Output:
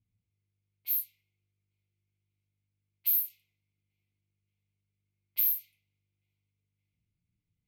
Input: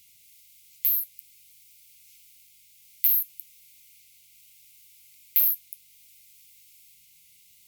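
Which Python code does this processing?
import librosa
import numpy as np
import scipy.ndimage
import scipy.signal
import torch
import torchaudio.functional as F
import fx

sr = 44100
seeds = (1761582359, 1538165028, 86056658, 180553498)

y = fx.echo_swing(x, sr, ms=1428, ratio=1.5, feedback_pct=48, wet_db=-20.0)
y = fx.rev_double_slope(y, sr, seeds[0], early_s=0.21, late_s=1.8, knee_db=-18, drr_db=1.5)
y = fx.env_lowpass(y, sr, base_hz=430.0, full_db=-17.5)
y = F.gain(torch.from_numpy(y), -5.5).numpy()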